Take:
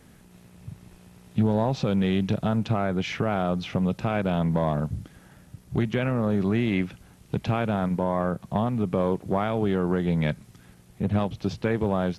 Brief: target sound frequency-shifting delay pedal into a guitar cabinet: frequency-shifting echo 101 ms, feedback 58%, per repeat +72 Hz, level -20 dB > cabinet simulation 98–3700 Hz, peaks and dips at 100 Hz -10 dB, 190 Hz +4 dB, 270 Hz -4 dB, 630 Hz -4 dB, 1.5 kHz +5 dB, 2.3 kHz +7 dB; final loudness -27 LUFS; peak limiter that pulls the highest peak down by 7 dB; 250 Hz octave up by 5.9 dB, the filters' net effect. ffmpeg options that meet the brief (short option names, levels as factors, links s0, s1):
-filter_complex "[0:a]equalizer=f=250:t=o:g=7,alimiter=limit=0.168:level=0:latency=1,asplit=6[s0][s1][s2][s3][s4][s5];[s1]adelay=101,afreqshift=72,volume=0.1[s6];[s2]adelay=202,afreqshift=144,volume=0.0582[s7];[s3]adelay=303,afreqshift=216,volume=0.0335[s8];[s4]adelay=404,afreqshift=288,volume=0.0195[s9];[s5]adelay=505,afreqshift=360,volume=0.0114[s10];[s0][s6][s7][s8][s9][s10]amix=inputs=6:normalize=0,highpass=98,equalizer=f=100:t=q:w=4:g=-10,equalizer=f=190:t=q:w=4:g=4,equalizer=f=270:t=q:w=4:g=-4,equalizer=f=630:t=q:w=4:g=-4,equalizer=f=1500:t=q:w=4:g=5,equalizer=f=2300:t=q:w=4:g=7,lowpass=f=3700:w=0.5412,lowpass=f=3700:w=1.3066,volume=0.794"